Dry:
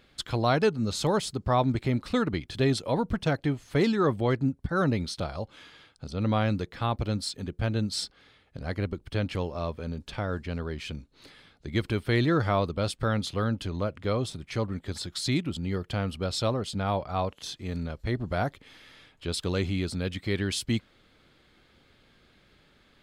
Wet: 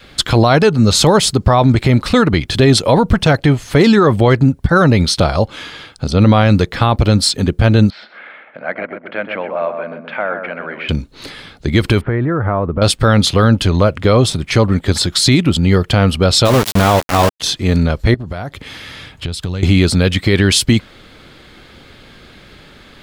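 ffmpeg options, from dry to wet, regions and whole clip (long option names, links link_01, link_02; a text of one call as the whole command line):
ffmpeg -i in.wav -filter_complex "[0:a]asettb=1/sr,asplit=3[link_01][link_02][link_03];[link_01]atrim=end=7.904[link_04];[link_02]atrim=start=7.9:end=10.89,asetpts=PTS-STARTPTS,afade=type=in:duration=0.004:curve=qsin,afade=type=out:start_time=2.986:duration=0.004:curve=qsin,acompressor=threshold=-52dB:ratio=1.5:attack=3.2:release=140:knee=1:detection=peak,highpass=frequency=250:width=0.5412,highpass=frequency=250:width=1.3066,equalizer=frequency=280:width_type=q:width=4:gain=-9,equalizer=frequency=410:width_type=q:width=4:gain=-9,equalizer=frequency=620:width_type=q:width=4:gain=7,equalizer=frequency=1500:width_type=q:width=4:gain=7,equalizer=frequency=2200:width_type=q:width=4:gain=6,lowpass=frequency=2500:width=0.5412,lowpass=frequency=2500:width=1.3066,asplit=2[link_05][link_06];[link_06]adelay=127,lowpass=frequency=1200:poles=1,volume=-5dB,asplit=2[link_07][link_08];[link_08]adelay=127,lowpass=frequency=1200:poles=1,volume=0.45,asplit=2[link_09][link_10];[link_10]adelay=127,lowpass=frequency=1200:poles=1,volume=0.45,asplit=2[link_11][link_12];[link_12]adelay=127,lowpass=frequency=1200:poles=1,volume=0.45,asplit=2[link_13][link_14];[link_14]adelay=127,lowpass=frequency=1200:poles=1,volume=0.45,asplit=2[link_15][link_16];[link_16]adelay=127,lowpass=frequency=1200:poles=1,volume=0.45[link_17];[link_05][link_07][link_09][link_11][link_13][link_15][link_17]amix=inputs=7:normalize=0,atrim=end_sample=131859[link_18];[link_03]atrim=start=10.886[link_19];[link_04][link_18]acrossfade=duration=0.004:curve1=hsin:curve2=qsin[link_20];[link_20][link_19]acrossfade=duration=0.004:curve1=qsin:curve2=hsin,asettb=1/sr,asplit=3[link_21][link_22][link_23];[link_21]atrim=end=12.014[link_24];[link_22]atrim=start=12.01:end=12.82,asetpts=PTS-STARTPTS,afade=type=in:duration=0.004:curve=qsin,afade=type=out:start_time=0.806:duration=0.004:curve=qsin,lowpass=frequency=1700:width=0.5412,lowpass=frequency=1700:width=1.3066,acompressor=threshold=-34dB:ratio=4:attack=3.2:release=140:knee=1:detection=peak[link_25];[link_23]atrim=start=12.816[link_26];[link_24][link_25]acrossfade=duration=0.004:curve1=hsin:curve2=qsin[link_27];[link_27][link_26]acrossfade=duration=0.004:curve1=qsin:curve2=hsin,asettb=1/sr,asplit=3[link_28][link_29][link_30];[link_28]atrim=end=16.454[link_31];[link_29]atrim=start=16.45:end=17.4,asetpts=PTS-STARTPTS,afade=type=in:duration=0.004:curve=qsin,afade=type=out:start_time=0.946:duration=0.004:curve=qsin,bandreject=frequency=108.3:width_type=h:width=4,bandreject=frequency=216.6:width_type=h:width=4,bandreject=frequency=324.9:width_type=h:width=4,bandreject=frequency=433.2:width_type=h:width=4,bandreject=frequency=541.5:width_type=h:width=4,bandreject=frequency=649.8:width_type=h:width=4,bandreject=frequency=758.1:width_type=h:width=4,bandreject=frequency=866.4:width_type=h:width=4,bandreject=frequency=974.7:width_type=h:width=4,bandreject=frequency=1083:width_type=h:width=4,bandreject=frequency=1191.3:width_type=h:width=4,bandreject=frequency=1299.6:width_type=h:width=4,bandreject=frequency=1407.9:width_type=h:width=4,bandreject=frequency=1516.2:width_type=h:width=4,bandreject=frequency=1624.5:width_type=h:width=4,bandreject=frequency=1732.8:width_type=h:width=4,bandreject=frequency=1841.1:width_type=h:width=4,bandreject=frequency=1949.4:width_type=h:width=4,bandreject=frequency=2057.7:width_type=h:width=4,bandreject=frequency=2166:width_type=h:width=4,bandreject=frequency=2274.3:width_type=h:width=4,bandreject=frequency=2382.6:width_type=h:width=4,bandreject=frequency=2490.9:width_type=h:width=4,bandreject=frequency=2599.2:width_type=h:width=4,bandreject=frequency=2707.5:width_type=h:width=4,bandreject=frequency=2815.8:width_type=h:width=4,bandreject=frequency=2924.1:width_type=h:width=4,bandreject=frequency=3032.4:width_type=h:width=4,bandreject=frequency=3140.7:width_type=h:width=4,bandreject=frequency=3249:width_type=h:width=4,bandreject=frequency=3357.3:width_type=h:width=4,bandreject=frequency=3465.6:width_type=h:width=4,aeval=exprs='val(0)*gte(abs(val(0)),0.0299)':channel_layout=same[link_32];[link_30]atrim=start=17.396[link_33];[link_31][link_32]acrossfade=duration=0.004:curve1=hsin:curve2=qsin[link_34];[link_34][link_33]acrossfade=duration=0.004:curve1=qsin:curve2=hsin,asettb=1/sr,asplit=3[link_35][link_36][link_37];[link_35]atrim=end=18.144[link_38];[link_36]atrim=start=18.14:end=19.63,asetpts=PTS-STARTPTS,afade=type=in:duration=0.004:curve=qsin,afade=type=out:start_time=1.486:duration=0.004:curve=qsin,highpass=50,acompressor=threshold=-42dB:ratio=8:attack=3.2:release=140:knee=1:detection=peak,asubboost=boost=6:cutoff=190[link_39];[link_37]atrim=start=19.626[link_40];[link_38][link_39]acrossfade=duration=0.004:curve1=hsin:curve2=qsin[link_41];[link_41][link_40]acrossfade=duration=0.004:curve1=qsin:curve2=hsin,adynamicequalizer=threshold=0.0126:dfrequency=280:dqfactor=1.4:tfrequency=280:tqfactor=1.4:attack=5:release=100:ratio=0.375:range=2.5:mode=cutabove:tftype=bell,alimiter=level_in=21dB:limit=-1dB:release=50:level=0:latency=1,volume=-1dB" out.wav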